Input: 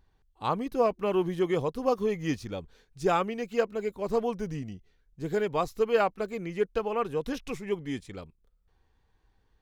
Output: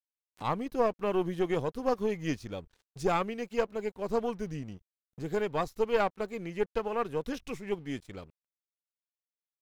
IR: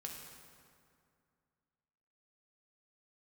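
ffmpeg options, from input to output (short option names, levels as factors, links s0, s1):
-af "aeval=exprs='(tanh(6.31*val(0)+0.55)-tanh(0.55))/6.31':c=same,aeval=exprs='sgn(val(0))*max(abs(val(0))-0.00126,0)':c=same,acompressor=mode=upward:threshold=0.0141:ratio=2.5"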